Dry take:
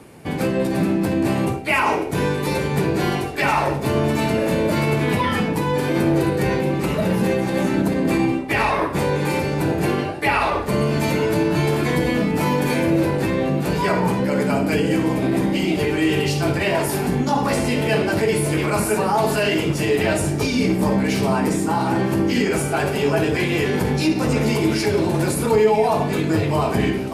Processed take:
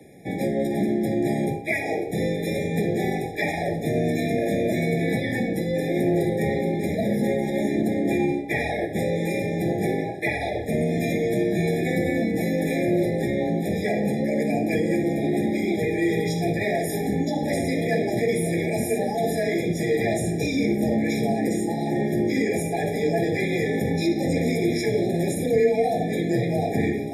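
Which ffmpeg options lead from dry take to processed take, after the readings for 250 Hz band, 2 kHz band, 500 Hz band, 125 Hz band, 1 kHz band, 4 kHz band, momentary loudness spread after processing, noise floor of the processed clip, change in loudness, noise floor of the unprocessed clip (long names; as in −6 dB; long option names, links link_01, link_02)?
−3.5 dB, −5.5 dB, −3.0 dB, −5.5 dB, −9.0 dB, −9.0 dB, 3 LU, −29 dBFS, −4.0 dB, −24 dBFS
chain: -af "afreqshift=23,afftfilt=real='re*eq(mod(floor(b*sr/1024/820),2),0)':imag='im*eq(mod(floor(b*sr/1024/820),2),0)':win_size=1024:overlap=0.75,volume=-3.5dB"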